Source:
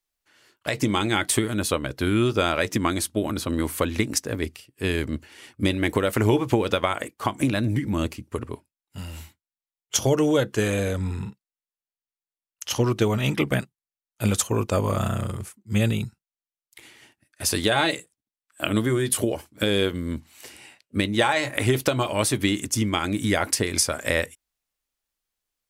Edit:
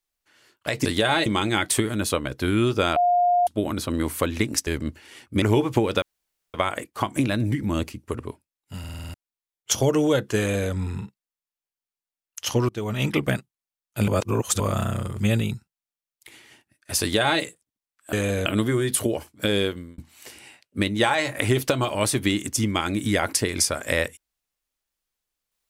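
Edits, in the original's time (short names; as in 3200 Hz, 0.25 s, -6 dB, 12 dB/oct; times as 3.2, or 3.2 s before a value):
2.55–3.06 bleep 709 Hz -16 dBFS
4.26–4.94 cut
5.69–6.18 cut
6.78 insert room tone 0.52 s
9.03 stutter in place 0.05 s, 7 plays
10.62–10.95 copy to 18.64
12.93–13.29 fade in, from -20 dB
14.32–14.84 reverse
15.44–15.71 cut
17.52–17.93 copy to 0.85
19.75–20.16 fade out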